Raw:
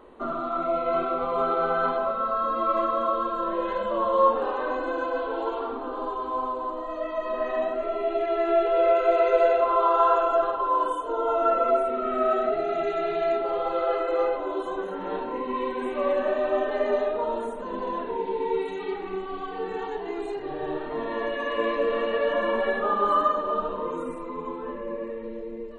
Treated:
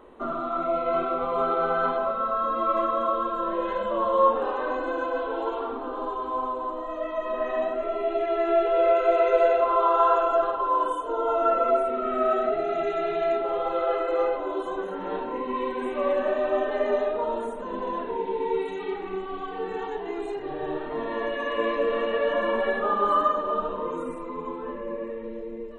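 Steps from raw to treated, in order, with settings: notch 4400 Hz, Q 7.5

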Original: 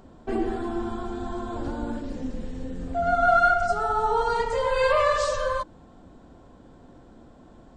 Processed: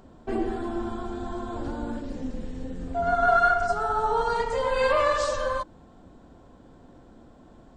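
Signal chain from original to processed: AM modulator 280 Hz, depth 15%

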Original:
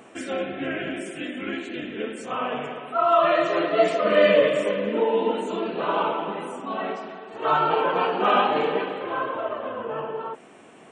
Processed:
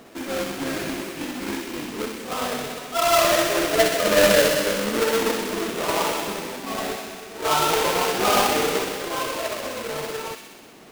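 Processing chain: half-waves squared off; on a send: thin delay 63 ms, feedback 74%, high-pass 1900 Hz, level -5 dB; on the sum: gain -3.5 dB

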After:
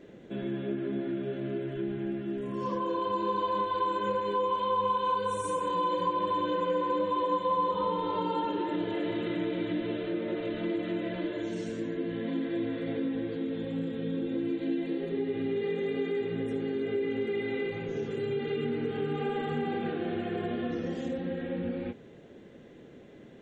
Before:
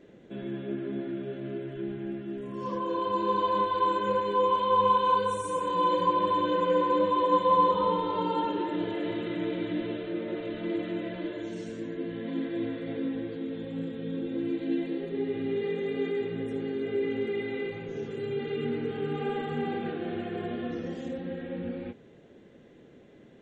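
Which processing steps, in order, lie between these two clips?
compressor 2.5:1, threshold -32 dBFS, peak gain reduction 9.5 dB; gain +3 dB

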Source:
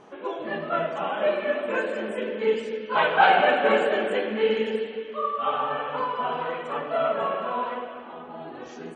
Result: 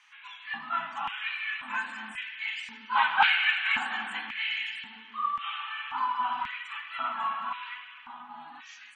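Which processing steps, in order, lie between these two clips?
LFO high-pass square 0.93 Hz 460–2200 Hz; elliptic band-stop 250–870 Hz, stop band 40 dB; gain -1.5 dB

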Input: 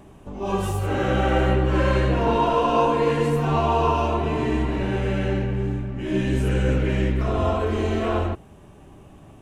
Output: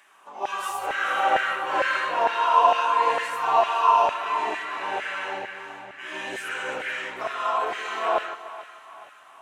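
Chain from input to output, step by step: LFO high-pass saw down 2.2 Hz 710–1800 Hz; split-band echo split 740 Hz, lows 0.151 s, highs 0.43 s, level -14 dB

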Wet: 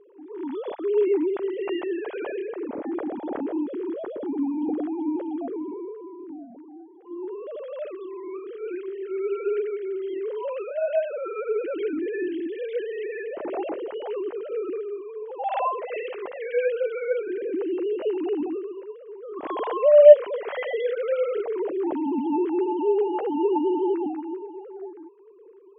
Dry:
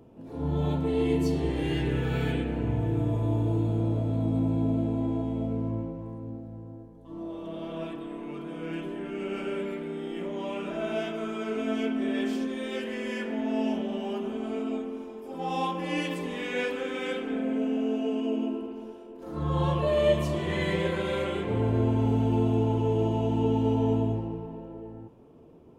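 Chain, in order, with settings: sine-wave speech; bell 580 Hz +7 dB 2.1 oct; gain -3 dB

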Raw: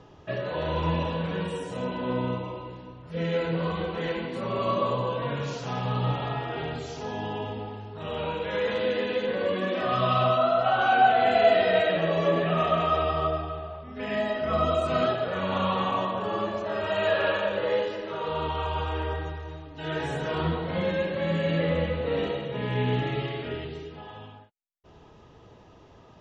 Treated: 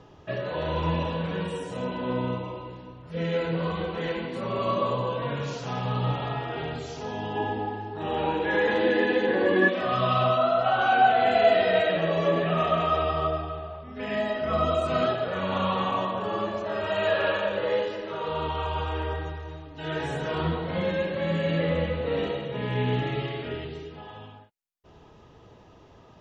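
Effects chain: 7.35–9.68 small resonant body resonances 340/810/1700 Hz, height 13 dB -> 17 dB, ringing for 45 ms

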